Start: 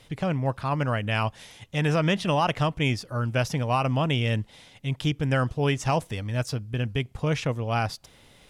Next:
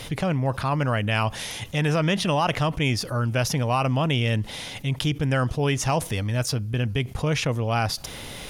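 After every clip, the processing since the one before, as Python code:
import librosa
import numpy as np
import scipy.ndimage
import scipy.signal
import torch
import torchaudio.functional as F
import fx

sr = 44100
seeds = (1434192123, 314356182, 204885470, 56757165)

y = fx.high_shelf(x, sr, hz=7200.0, db=5.5)
y = fx.notch(y, sr, hz=7700.0, q=11.0)
y = fx.env_flatten(y, sr, amount_pct=50)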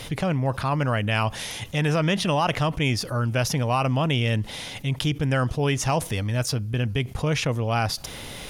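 y = x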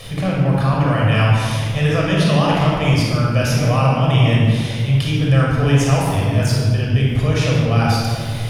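y = fx.room_shoebox(x, sr, seeds[0], volume_m3=3200.0, walls='mixed', distance_m=6.0)
y = y * 10.0 ** (-3.0 / 20.0)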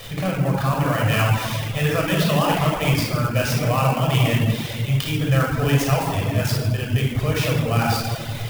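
y = fx.low_shelf(x, sr, hz=420.0, db=-4.5)
y = fx.dereverb_blind(y, sr, rt60_s=0.52)
y = fx.clock_jitter(y, sr, seeds[1], jitter_ms=0.024)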